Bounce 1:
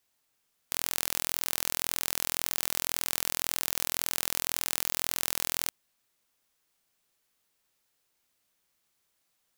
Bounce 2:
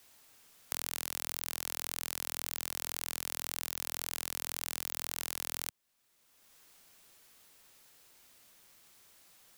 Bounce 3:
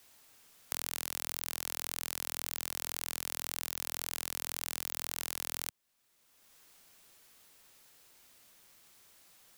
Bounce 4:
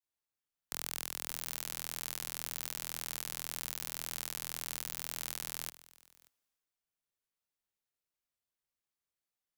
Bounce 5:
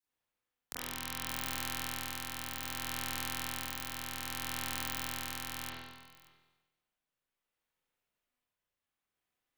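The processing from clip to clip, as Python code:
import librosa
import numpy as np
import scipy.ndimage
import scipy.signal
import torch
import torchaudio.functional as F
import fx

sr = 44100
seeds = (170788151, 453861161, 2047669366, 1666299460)

y1 = fx.band_squash(x, sr, depth_pct=70)
y1 = y1 * 10.0 ** (-7.0 / 20.0)
y2 = y1
y3 = y2 + 10.0 ** (-12.5 / 20.0) * np.pad(y2, (int(582 * sr / 1000.0), 0))[:len(y2)]
y3 = fx.band_widen(y3, sr, depth_pct=100)
y3 = y3 * 10.0 ** (-2.5 / 20.0)
y4 = fx.rev_spring(y3, sr, rt60_s=1.1, pass_ms=(36, 40), chirp_ms=60, drr_db=-8.0)
y4 = y4 * (1.0 - 0.35 / 2.0 + 0.35 / 2.0 * np.cos(2.0 * np.pi * 0.63 * (np.arange(len(y4)) / sr)))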